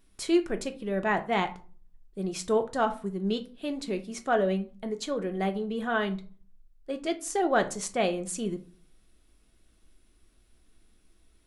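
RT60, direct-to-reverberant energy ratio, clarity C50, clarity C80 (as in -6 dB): 0.40 s, 6.5 dB, 15.5 dB, 21.0 dB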